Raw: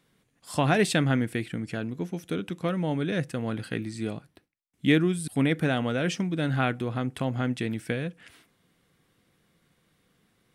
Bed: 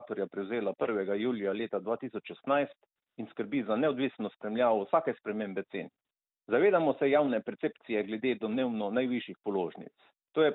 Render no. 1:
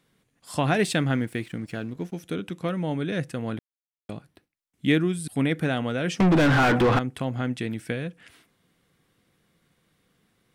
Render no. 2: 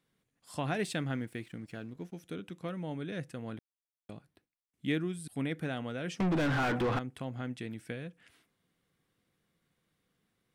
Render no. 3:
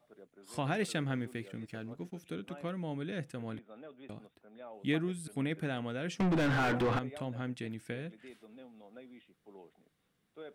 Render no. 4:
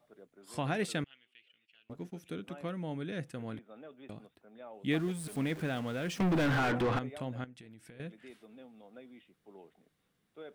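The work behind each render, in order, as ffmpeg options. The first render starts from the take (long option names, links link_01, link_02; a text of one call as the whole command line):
ffmpeg -i in.wav -filter_complex "[0:a]asettb=1/sr,asplit=3[link_01][link_02][link_03];[link_01]atrim=end=0.764[link_04];[link_02]atrim=start=0.76:end=2.2,asetpts=PTS-STARTPTS,afade=type=in:duration=0.004:curve=qsin,afade=type=out:start_time=1.436:duration=0.004:curve=qsin,aeval=exprs='sgn(val(0))*max(abs(val(0))-0.00211,0)':channel_layout=same[link_05];[link_03]atrim=start=2.196[link_06];[link_04][link_05]acrossfade=duration=0.004:curve1=hsin:curve2=qsin[link_07];[link_07][link_06]acrossfade=duration=0.004:curve1=qsin:curve2=hsin,asettb=1/sr,asplit=3[link_08][link_09][link_10];[link_08]atrim=end=6.204[link_11];[link_09]atrim=start=6.2:end=6.99,asetpts=PTS-STARTPTS,afade=type=in:duration=0.004:curve=qsin,afade=type=out:start_time=0.786:duration=0.004:curve=qsin,asplit=2[link_12][link_13];[link_13]highpass=frequency=720:poles=1,volume=38dB,asoftclip=type=tanh:threshold=-10.5dB[link_14];[link_12][link_14]amix=inputs=2:normalize=0,lowpass=frequency=1300:poles=1,volume=-6dB[link_15];[link_10]atrim=start=6.986[link_16];[link_11][link_15]acrossfade=duration=0.004:curve1=hsin:curve2=qsin[link_17];[link_17][link_16]acrossfade=duration=0.004:curve1=qsin:curve2=hsin,asplit=3[link_18][link_19][link_20];[link_18]atrim=end=3.59,asetpts=PTS-STARTPTS,afade=type=out:start_time=3.586:duration=0.004:curve=hsin[link_21];[link_19]atrim=start=3.59:end=4.09,asetpts=PTS-STARTPTS,volume=0[link_22];[link_20]atrim=start=4.09,asetpts=PTS-STARTPTS,afade=type=in:duration=0.004:curve=hsin[link_23];[link_21][link_22][link_23]concat=n=3:v=0:a=1" out.wav
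ffmpeg -i in.wav -af "volume=-10.5dB" out.wav
ffmpeg -i in.wav -i bed.wav -filter_complex "[1:a]volume=-22.5dB[link_01];[0:a][link_01]amix=inputs=2:normalize=0" out.wav
ffmpeg -i in.wav -filter_complex "[0:a]asettb=1/sr,asplit=3[link_01][link_02][link_03];[link_01]atrim=end=1.044[link_04];[link_02]atrim=start=1.04:end=1.9,asetpts=PTS-STARTPTS,afade=type=in:duration=0.004:curve=qsin,afade=type=out:start_time=0.856:duration=0.004:curve=qsin,bandpass=frequency=2900:width_type=q:width=9.3[link_05];[link_03]atrim=start=1.896[link_06];[link_04][link_05]acrossfade=duration=0.004:curve1=hsin:curve2=qsin[link_07];[link_07][link_06]acrossfade=duration=0.004:curve1=qsin:curve2=hsin,asettb=1/sr,asplit=3[link_08][link_09][link_10];[link_08]atrim=end=4.914[link_11];[link_09]atrim=start=4.91:end=6.6,asetpts=PTS-STARTPTS,afade=type=in:duration=0.004:curve=qsin,afade=type=out:start_time=1.686:duration=0.004:curve=qsin,aeval=exprs='val(0)+0.5*0.00631*sgn(val(0))':channel_layout=same[link_12];[link_10]atrim=start=6.596[link_13];[link_11][link_12]acrossfade=duration=0.004:curve1=hsin:curve2=qsin[link_14];[link_14][link_13]acrossfade=duration=0.004:curve1=qsin:curve2=hsin,asettb=1/sr,asplit=3[link_15][link_16][link_17];[link_15]atrim=end=7.444[link_18];[link_16]atrim=start=7.44:end=8,asetpts=PTS-STARTPTS,afade=type=in:duration=0.004:curve=qsin,afade=type=out:start_time=0.556:duration=0.004:curve=qsin,acompressor=threshold=-49dB:ratio=8:attack=3.2:release=140:knee=1:detection=peak[link_19];[link_17]atrim=start=7.996[link_20];[link_18][link_19]acrossfade=duration=0.004:curve1=hsin:curve2=qsin[link_21];[link_21][link_20]acrossfade=duration=0.004:curve1=qsin:curve2=hsin" out.wav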